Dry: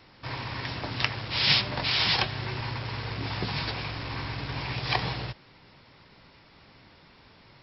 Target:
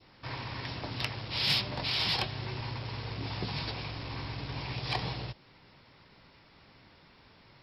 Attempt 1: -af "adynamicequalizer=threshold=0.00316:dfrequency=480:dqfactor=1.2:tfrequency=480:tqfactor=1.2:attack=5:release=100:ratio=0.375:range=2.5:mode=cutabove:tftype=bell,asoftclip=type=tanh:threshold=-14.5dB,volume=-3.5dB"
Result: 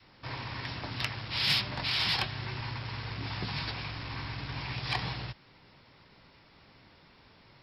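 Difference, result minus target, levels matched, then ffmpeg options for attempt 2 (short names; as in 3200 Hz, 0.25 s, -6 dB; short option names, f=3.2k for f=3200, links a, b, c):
500 Hz band -4.0 dB
-af "adynamicequalizer=threshold=0.00316:dfrequency=1600:dqfactor=1.2:tfrequency=1600:tqfactor=1.2:attack=5:release=100:ratio=0.375:range=2.5:mode=cutabove:tftype=bell,asoftclip=type=tanh:threshold=-14.5dB,volume=-3.5dB"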